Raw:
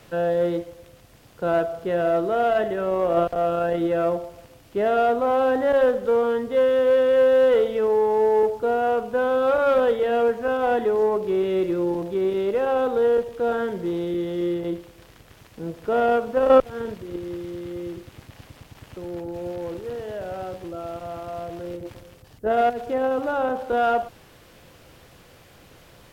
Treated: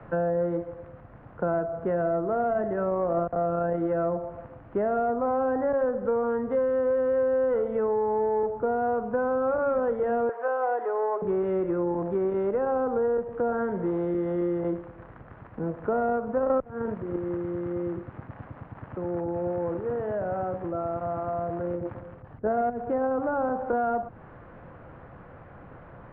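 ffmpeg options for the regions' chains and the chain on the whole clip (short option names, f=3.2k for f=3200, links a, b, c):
-filter_complex "[0:a]asettb=1/sr,asplit=3[a][b][c];[a]atrim=end=10.294[d];[b]atrim=start=10.29:end=11.22,asetpts=PTS-STARTPTS,afade=t=in:d=0.004:c=qsin,afade=t=out:st=0.926:d=0.004:c=qsin,aeval=exprs='val(0)+0.5*0.01*sgn(val(0))':c=same,highpass=f=500:w=0.5412,highpass=f=500:w=1.3066[e];[c]atrim=start=11.216[f];[d][e]acrossfade=d=0.004:c1=hsin:c2=qsin[g];[g][f]acrossfade=d=0.004:c1=qsin:c2=hsin,lowpass=f=1.5k:w=0.5412,lowpass=f=1.5k:w=1.3066,equalizer=f=390:w=1.3:g=-5,acrossover=split=100|390[h][i][j];[h]acompressor=threshold=-60dB:ratio=4[k];[i]acompressor=threshold=-38dB:ratio=4[l];[j]acompressor=threshold=-36dB:ratio=4[m];[k][l][m]amix=inputs=3:normalize=0,volume=7dB"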